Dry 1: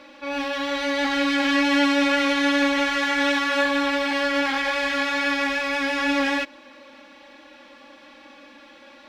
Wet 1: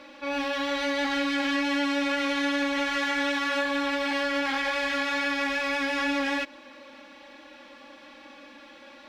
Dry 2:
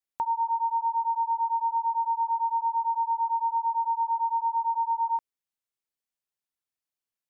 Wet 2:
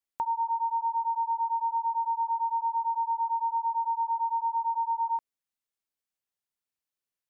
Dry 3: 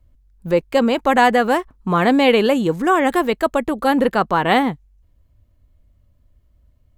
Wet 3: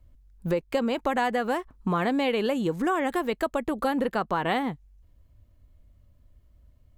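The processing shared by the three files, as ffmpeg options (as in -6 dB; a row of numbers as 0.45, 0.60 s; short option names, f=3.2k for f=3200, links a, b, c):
-af "acompressor=threshold=-23dB:ratio=4,volume=-1dB"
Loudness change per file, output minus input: -5.0, -2.0, -10.0 LU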